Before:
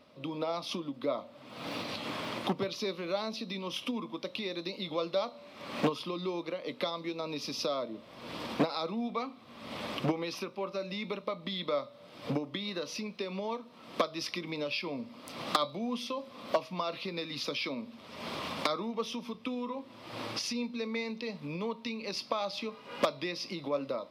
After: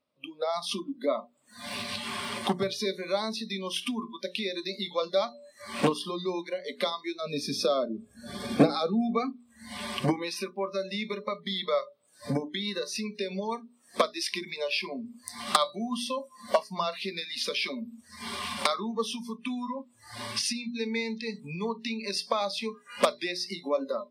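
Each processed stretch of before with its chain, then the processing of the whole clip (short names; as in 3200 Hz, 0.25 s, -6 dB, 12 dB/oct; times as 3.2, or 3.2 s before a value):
7.21–9.36 low shelf 450 Hz +7.5 dB + notch comb 980 Hz
whole clip: spectral noise reduction 26 dB; bell 8800 Hz +14.5 dB 0.3 oct; notches 60/120/180/240/300/360/420 Hz; gain +5 dB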